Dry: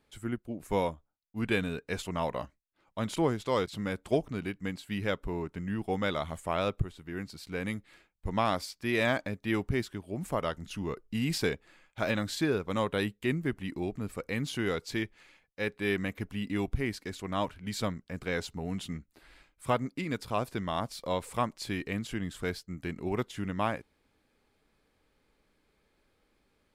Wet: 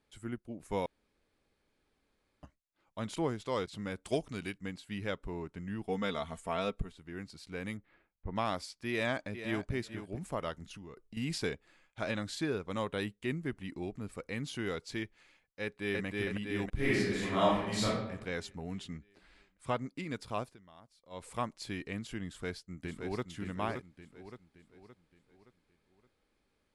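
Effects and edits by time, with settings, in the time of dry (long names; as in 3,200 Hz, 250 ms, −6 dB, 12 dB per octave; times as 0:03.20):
0:00.86–0:02.43: fill with room tone
0:04.05–0:04.58: high-shelf EQ 2,500 Hz +10.5 dB
0:05.88–0:06.92: comb filter 4.4 ms
0:07.77–0:08.36: low-pass filter 1,800 Hz
0:08.90–0:09.74: delay throw 440 ms, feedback 15%, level −10 dB
0:10.69–0:11.17: downward compressor 12 to 1, threshold −39 dBFS
0:15.62–0:16.05: delay throw 320 ms, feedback 65%, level −0.5 dB
0:16.75–0:17.85: thrown reverb, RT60 0.87 s, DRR −8.5 dB
0:18.74–0:19.84: low-pass filter 8,400 Hz
0:20.40–0:21.27: duck −19.5 dB, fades 0.17 s
0:22.26–0:23.28: delay throw 570 ms, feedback 45%, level −6 dB
whole clip: elliptic low-pass filter 11,000 Hz, stop band 40 dB; level −4.5 dB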